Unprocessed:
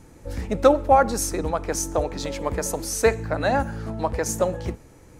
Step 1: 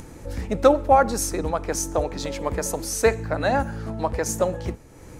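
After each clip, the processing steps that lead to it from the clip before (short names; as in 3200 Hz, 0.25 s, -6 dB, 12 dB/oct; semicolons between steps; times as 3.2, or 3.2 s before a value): upward compressor, threshold -33 dBFS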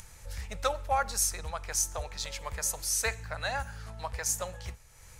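passive tone stack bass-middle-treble 10-0-10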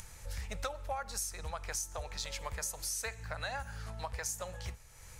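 compressor 6:1, threshold -35 dBFS, peak gain reduction 12 dB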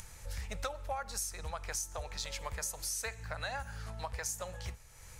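nothing audible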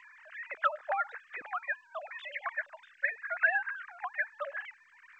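sine-wave speech; bell 1700 Hz +14.5 dB 0.81 oct; gain -3.5 dB; G.722 64 kbps 16000 Hz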